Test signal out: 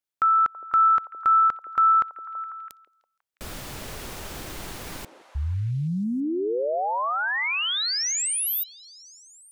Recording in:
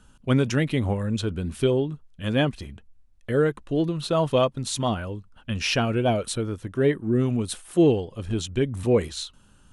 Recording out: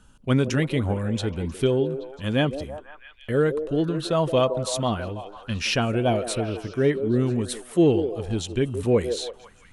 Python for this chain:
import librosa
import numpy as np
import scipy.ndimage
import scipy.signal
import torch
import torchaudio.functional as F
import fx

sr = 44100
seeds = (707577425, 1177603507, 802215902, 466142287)

y = fx.echo_stepped(x, sr, ms=165, hz=440.0, octaves=0.7, feedback_pct=70, wet_db=-6.5)